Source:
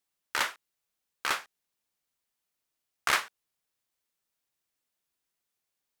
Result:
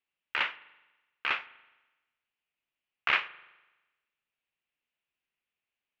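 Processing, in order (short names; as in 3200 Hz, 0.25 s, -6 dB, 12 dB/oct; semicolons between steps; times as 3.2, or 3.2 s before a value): ladder low-pass 3000 Hz, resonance 60%; spring tank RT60 1.1 s, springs 41 ms, chirp 30 ms, DRR 17.5 dB; gain +6 dB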